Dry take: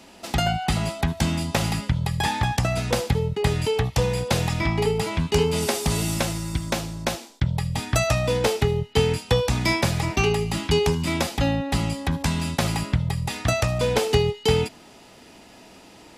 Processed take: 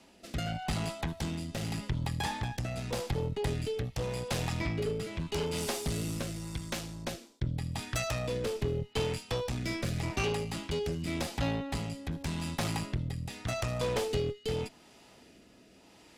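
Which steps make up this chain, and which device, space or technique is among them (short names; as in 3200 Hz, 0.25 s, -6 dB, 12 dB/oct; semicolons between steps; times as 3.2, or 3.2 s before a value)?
overdriven rotary cabinet (tube stage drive 20 dB, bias 0.6; rotary speaker horn 0.85 Hz); gain -4.5 dB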